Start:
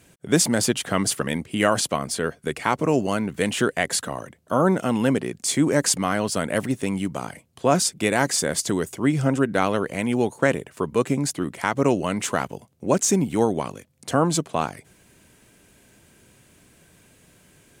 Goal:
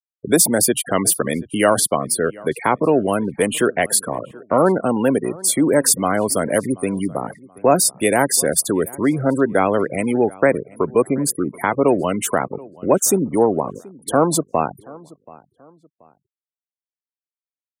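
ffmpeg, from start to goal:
ffmpeg -i in.wav -filter_complex "[0:a]aexciter=amount=6.4:drive=1.7:freq=9400,asplit=2[link_01][link_02];[link_02]acompressor=threshold=-32dB:ratio=10,volume=-3dB[link_03];[link_01][link_03]amix=inputs=2:normalize=0,afftfilt=real='re*gte(hypot(re,im),0.0562)':imag='im*gte(hypot(re,im),0.0562)':win_size=1024:overlap=0.75,acrossover=split=280|900[link_04][link_05][link_06];[link_04]alimiter=limit=-23dB:level=0:latency=1:release=48[link_07];[link_05]acontrast=35[link_08];[link_07][link_08][link_06]amix=inputs=3:normalize=0,asplit=2[link_09][link_10];[link_10]adelay=730,lowpass=frequency=2200:poles=1,volume=-22dB,asplit=2[link_11][link_12];[link_12]adelay=730,lowpass=frequency=2200:poles=1,volume=0.34[link_13];[link_09][link_11][link_13]amix=inputs=3:normalize=0,volume=1dB" out.wav

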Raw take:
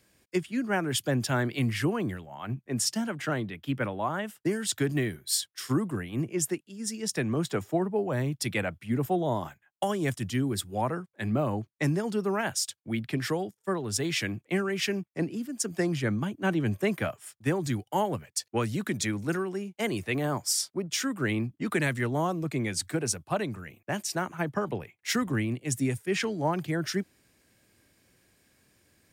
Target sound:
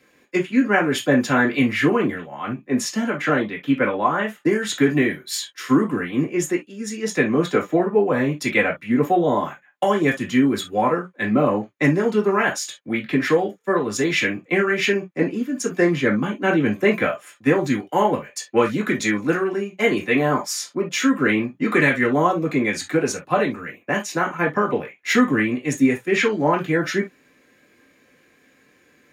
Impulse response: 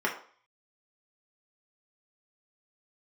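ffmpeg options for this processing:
-filter_complex "[1:a]atrim=start_sample=2205,atrim=end_sample=3969,asetrate=52920,aresample=44100[link_01];[0:a][link_01]afir=irnorm=-1:irlink=0,volume=2dB"

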